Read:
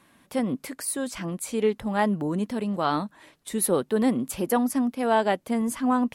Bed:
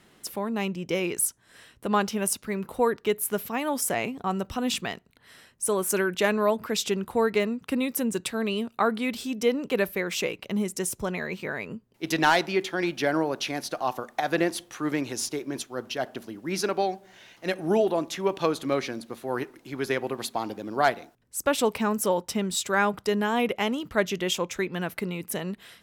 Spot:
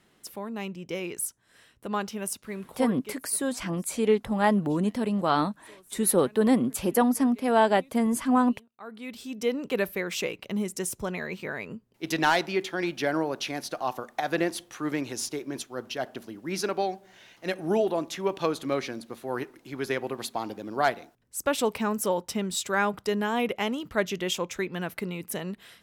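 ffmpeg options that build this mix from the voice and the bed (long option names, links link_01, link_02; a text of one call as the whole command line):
ffmpeg -i stem1.wav -i stem2.wav -filter_complex "[0:a]adelay=2450,volume=1dB[link_01];[1:a]volume=20dB,afade=type=out:start_time=2.6:duration=0.64:silence=0.0794328,afade=type=in:start_time=8.77:duration=0.85:silence=0.0501187[link_02];[link_01][link_02]amix=inputs=2:normalize=0" out.wav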